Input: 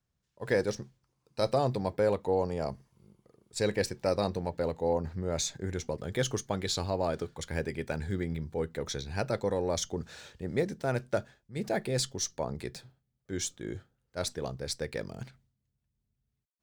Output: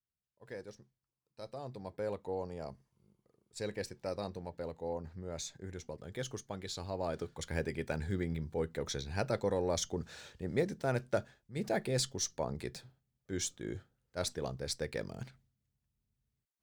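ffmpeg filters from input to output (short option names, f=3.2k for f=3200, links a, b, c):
-af "volume=-2.5dB,afade=t=in:st=1.55:d=0.58:silence=0.398107,afade=t=in:st=6.78:d=0.69:silence=0.421697"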